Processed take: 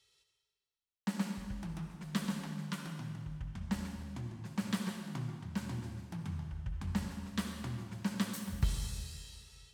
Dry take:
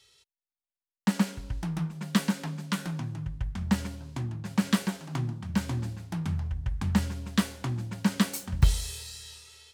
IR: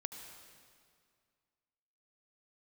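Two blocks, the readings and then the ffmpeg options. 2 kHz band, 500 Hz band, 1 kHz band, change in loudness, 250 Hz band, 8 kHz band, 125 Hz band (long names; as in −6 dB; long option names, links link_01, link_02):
−9.0 dB, −9.0 dB, −9.0 dB, −9.0 dB, −9.0 dB, −9.0 dB, −9.0 dB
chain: -filter_complex "[1:a]atrim=start_sample=2205,asetrate=52920,aresample=44100[link_01];[0:a][link_01]afir=irnorm=-1:irlink=0,volume=-5.5dB"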